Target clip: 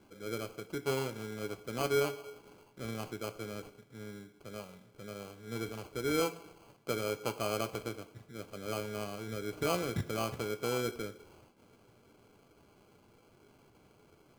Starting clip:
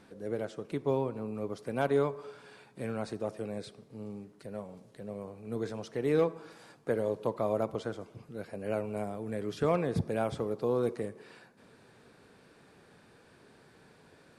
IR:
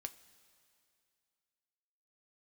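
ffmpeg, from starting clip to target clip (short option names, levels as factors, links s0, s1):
-filter_complex "[0:a]acrusher=samples=24:mix=1:aa=0.000001[s0];[1:a]atrim=start_sample=2205,afade=t=out:st=0.19:d=0.01,atrim=end_sample=8820[s1];[s0][s1]afir=irnorm=-1:irlink=0"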